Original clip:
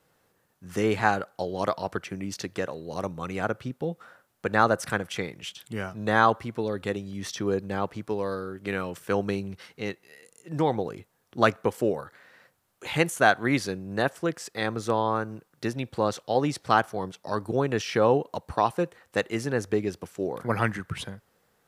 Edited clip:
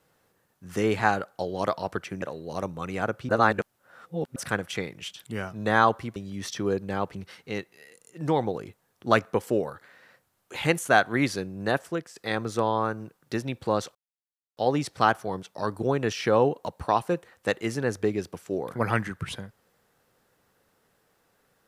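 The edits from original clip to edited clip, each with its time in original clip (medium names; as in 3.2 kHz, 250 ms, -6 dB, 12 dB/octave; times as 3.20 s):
2.22–2.63 s: delete
3.70–4.77 s: reverse
6.57–6.97 s: delete
7.96–9.46 s: delete
14.15–14.47 s: fade out linear, to -12 dB
16.26 s: insert silence 0.62 s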